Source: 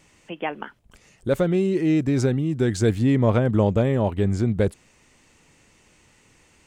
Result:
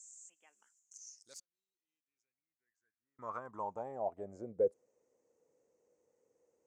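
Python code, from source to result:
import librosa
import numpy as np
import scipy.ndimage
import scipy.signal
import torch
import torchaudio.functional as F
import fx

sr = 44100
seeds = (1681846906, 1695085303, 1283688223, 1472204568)

y = fx.gate_flip(x, sr, shuts_db=-27.0, range_db=-41, at=(1.35, 3.19))
y = fx.filter_sweep_bandpass(y, sr, from_hz=7400.0, to_hz=490.0, start_s=0.72, end_s=4.58, q=7.8)
y = fx.high_shelf_res(y, sr, hz=4700.0, db=12.0, q=3.0)
y = F.gain(torch.from_numpy(y), -3.0).numpy()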